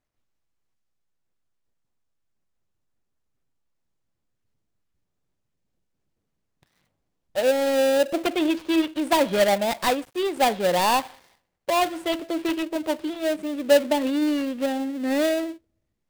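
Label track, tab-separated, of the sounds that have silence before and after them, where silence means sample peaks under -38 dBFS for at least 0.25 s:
7.350000	11.150000	sound
11.690000	15.550000	sound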